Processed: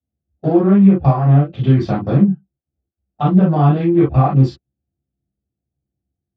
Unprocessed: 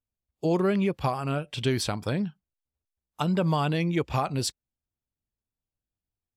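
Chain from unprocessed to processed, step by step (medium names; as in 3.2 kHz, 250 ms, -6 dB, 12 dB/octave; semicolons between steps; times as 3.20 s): local Wiener filter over 41 samples; dynamic bell 4.1 kHz, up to -6 dB, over -49 dBFS, Q 0.71; compression, threshold -25 dBFS, peak gain reduction 5 dB; distance through air 220 m; reverberation, pre-delay 3 ms, DRR -10 dB; trim -6 dB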